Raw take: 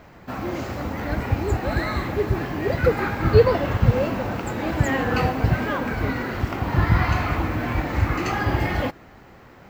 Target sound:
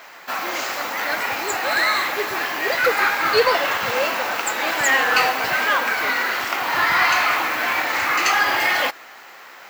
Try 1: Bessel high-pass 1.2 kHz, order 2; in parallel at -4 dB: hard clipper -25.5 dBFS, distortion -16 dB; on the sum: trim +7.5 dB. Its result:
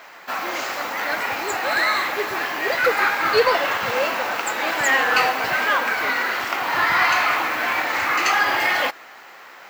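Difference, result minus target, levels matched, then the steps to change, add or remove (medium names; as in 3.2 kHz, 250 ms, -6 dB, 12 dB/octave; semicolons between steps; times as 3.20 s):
8 kHz band -2.5 dB
add after Bessel high-pass: treble shelf 3.7 kHz +4.5 dB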